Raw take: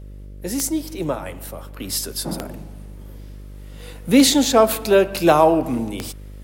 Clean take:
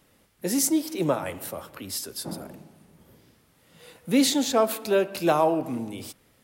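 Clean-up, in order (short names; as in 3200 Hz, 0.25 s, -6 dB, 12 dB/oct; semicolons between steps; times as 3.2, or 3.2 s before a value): de-click; de-hum 49.7 Hz, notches 12; gain 0 dB, from 1.8 s -7.5 dB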